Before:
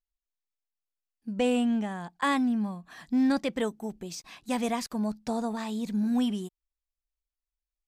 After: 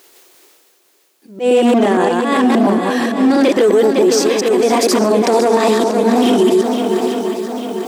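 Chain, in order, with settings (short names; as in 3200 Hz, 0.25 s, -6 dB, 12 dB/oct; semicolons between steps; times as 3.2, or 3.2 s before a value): reverse delay 0.116 s, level -3 dB; reverse; upward compressor, threshold -43 dBFS; reverse; auto swell 0.44 s; overloaded stage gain 27 dB; resonant high-pass 370 Hz, resonance Q 4.1; on a send: swung echo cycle 0.846 s, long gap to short 1.5:1, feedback 50%, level -10.5 dB; on the sum: maximiser +26 dB; gain -3.5 dB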